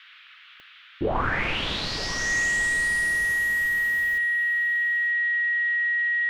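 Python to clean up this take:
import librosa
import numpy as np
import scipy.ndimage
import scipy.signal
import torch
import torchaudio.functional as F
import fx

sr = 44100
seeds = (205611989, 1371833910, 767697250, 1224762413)

y = fx.fix_declick_ar(x, sr, threshold=10.0)
y = fx.notch(y, sr, hz=1900.0, q=30.0)
y = fx.noise_reduce(y, sr, print_start_s=0.5, print_end_s=1.0, reduce_db=24.0)
y = fx.fix_echo_inverse(y, sr, delay_ms=932, level_db=-15.5)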